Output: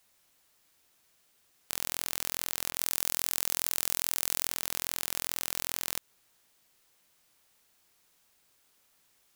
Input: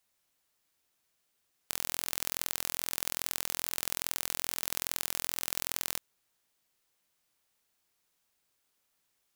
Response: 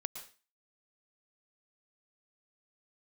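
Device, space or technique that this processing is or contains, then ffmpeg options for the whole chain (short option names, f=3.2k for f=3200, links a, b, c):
stacked limiters: -filter_complex "[0:a]alimiter=limit=-9dB:level=0:latency=1:release=148,alimiter=limit=-14dB:level=0:latency=1:release=23,asettb=1/sr,asplit=3[a][b][c];[a]atrim=end=2.714[d];[b]atrim=start=2.71:end=4.48,asetpts=PTS-STARTPTS,afade=t=in:d=0.004:c=qsin,afade=t=out:st=1.766:d=0.004:c=qsin,adynamicequalizer=threshold=0.00126:dfrequency=4600:dqfactor=0.7:tfrequency=4600:tqfactor=0.7:attack=5:release=100:ratio=0.375:range=2:mode=boostabove:tftype=highshelf[e];[c]atrim=start=4.476[f];[d][e]acrossfade=d=0.004:c1=hsin:c2=qsin[g];[g][f]acrossfade=d=0.004:c1=qsin:c2=hsin,volume=9dB"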